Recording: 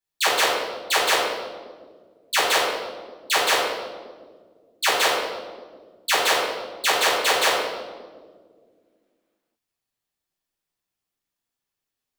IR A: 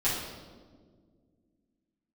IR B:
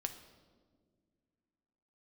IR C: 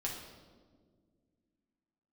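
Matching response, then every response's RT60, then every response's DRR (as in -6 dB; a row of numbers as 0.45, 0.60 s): A; 1.7 s, not exponential, 1.7 s; -10.5, 6.5, -3.0 dB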